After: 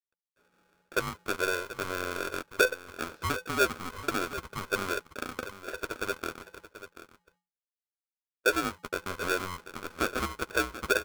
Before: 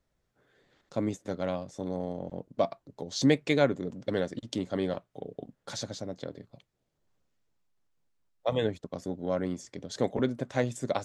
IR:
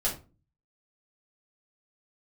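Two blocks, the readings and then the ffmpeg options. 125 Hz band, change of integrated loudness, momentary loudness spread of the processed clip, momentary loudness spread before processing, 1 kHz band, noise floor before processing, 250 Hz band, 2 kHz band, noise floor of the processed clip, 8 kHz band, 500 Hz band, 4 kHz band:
-7.5 dB, 0.0 dB, 12 LU, 15 LU, +5.5 dB, -79 dBFS, -7.0 dB, +11.0 dB, under -85 dBFS, +5.0 dB, -2.5 dB, +3.0 dB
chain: -filter_complex "[0:a]highpass=81,lowshelf=f=400:g=-6.5,acompressor=threshold=-36dB:ratio=2,acrusher=bits=9:dc=4:mix=0:aa=0.000001,lowpass=f=680:t=q:w=5.1,afreqshift=330,asplit=2[a][b];[b]adelay=12,volume=-10dB[c];[a][c]amix=inputs=2:normalize=0,aecho=1:1:735:0.211,aeval=exprs='val(0)*sgn(sin(2*PI*510*n/s))':c=same"

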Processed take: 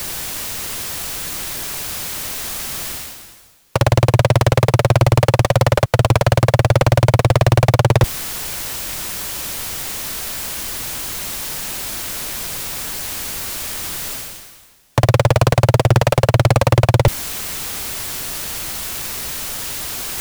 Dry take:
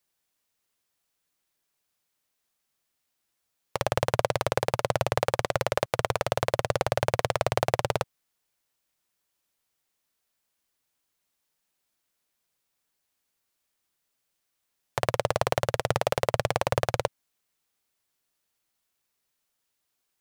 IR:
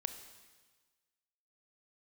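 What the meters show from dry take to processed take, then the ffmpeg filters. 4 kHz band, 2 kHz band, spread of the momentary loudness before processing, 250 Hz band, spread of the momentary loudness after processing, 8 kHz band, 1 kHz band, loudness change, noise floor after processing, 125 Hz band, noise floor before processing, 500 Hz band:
+13.0 dB, +10.5 dB, 5 LU, +17.0 dB, 9 LU, +18.0 dB, +9.0 dB, +9.5 dB, -41 dBFS, +20.5 dB, -80 dBFS, +9.5 dB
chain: -af "lowshelf=f=140:g=10,areverse,acompressor=mode=upward:threshold=-25dB:ratio=2.5,areverse,asoftclip=type=tanh:threshold=-20.5dB,apsyclip=29.5dB,volume=-6.5dB"

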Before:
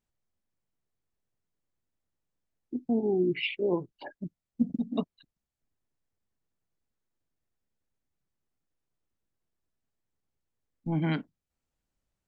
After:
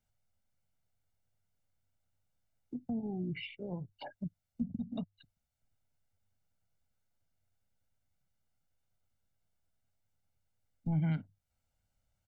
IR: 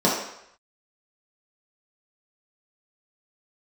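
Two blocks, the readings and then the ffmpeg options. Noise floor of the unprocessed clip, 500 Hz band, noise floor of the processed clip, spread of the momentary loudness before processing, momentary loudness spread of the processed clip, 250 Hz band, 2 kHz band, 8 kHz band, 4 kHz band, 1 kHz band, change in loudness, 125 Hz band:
under -85 dBFS, -16.5 dB, -84 dBFS, 15 LU, 12 LU, -7.5 dB, -11.5 dB, n/a, -10.5 dB, -9.0 dB, -8.5 dB, -1.0 dB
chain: -filter_complex "[0:a]equalizer=f=99:t=o:w=0.21:g=11,aecho=1:1:1.4:0.6,acrossover=split=180[a][b];[b]acompressor=threshold=-42dB:ratio=10[c];[a][c]amix=inputs=2:normalize=0"

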